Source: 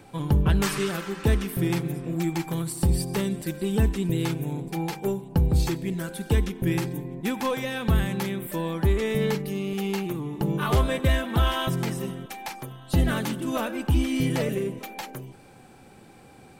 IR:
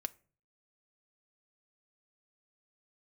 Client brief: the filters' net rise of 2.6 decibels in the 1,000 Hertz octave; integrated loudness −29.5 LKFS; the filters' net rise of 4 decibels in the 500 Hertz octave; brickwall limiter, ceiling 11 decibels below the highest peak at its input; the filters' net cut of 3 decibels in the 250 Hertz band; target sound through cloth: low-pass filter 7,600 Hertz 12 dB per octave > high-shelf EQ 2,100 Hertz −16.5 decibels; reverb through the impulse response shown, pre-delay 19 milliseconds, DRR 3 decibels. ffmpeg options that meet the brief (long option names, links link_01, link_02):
-filter_complex "[0:a]equalizer=frequency=250:width_type=o:gain=-7,equalizer=frequency=500:width_type=o:gain=7.5,equalizer=frequency=1000:width_type=o:gain=5,alimiter=limit=-19.5dB:level=0:latency=1,asplit=2[link_01][link_02];[1:a]atrim=start_sample=2205,adelay=19[link_03];[link_02][link_03]afir=irnorm=-1:irlink=0,volume=-2dB[link_04];[link_01][link_04]amix=inputs=2:normalize=0,lowpass=7600,highshelf=frequency=2100:gain=-16.5,volume=0.5dB"